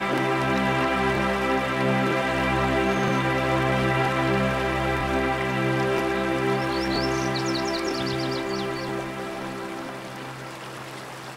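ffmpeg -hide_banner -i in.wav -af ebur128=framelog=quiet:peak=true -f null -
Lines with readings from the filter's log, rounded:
Integrated loudness:
  I:         -24.2 LUFS
  Threshold: -34.7 LUFS
Loudness range:
  LRA:         6.4 LU
  Threshold: -44.4 LUFS
  LRA low:   -29.3 LUFS
  LRA high:  -22.9 LUFS
True peak:
  Peak:      -10.4 dBFS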